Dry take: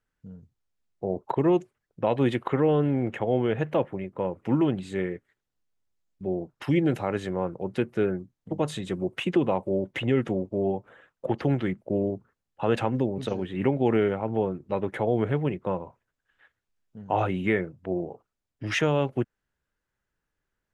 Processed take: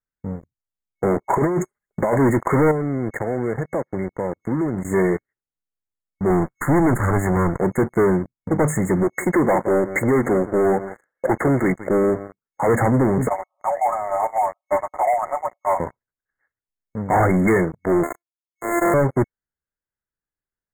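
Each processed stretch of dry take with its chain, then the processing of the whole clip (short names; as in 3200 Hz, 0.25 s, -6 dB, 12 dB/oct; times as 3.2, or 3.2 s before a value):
1.28–2.18 tilt shelf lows -4 dB, about 640 Hz + comb 4.9 ms, depth 39% + negative-ratio compressor -28 dBFS, ratio -0.5
2.71–4.85 compressor 4:1, threshold -37 dBFS + gate -44 dBFS, range -10 dB
6.3–7.6 minimum comb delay 0.7 ms + mismatched tape noise reduction encoder only
9.03–12.69 low shelf 220 Hz -10 dB + echo 0.17 s -17 dB
13.28–15.8 brick-wall FIR band-pass 570–1300 Hz + comb 5.5 ms, depth 55%
18.03–18.94 sample sorter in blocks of 128 samples + HPF 370 Hz 24 dB/oct + transient shaper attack -6 dB, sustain -11 dB
whole clip: sample leveller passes 5; FFT band-reject 2200–6500 Hz; gain -2.5 dB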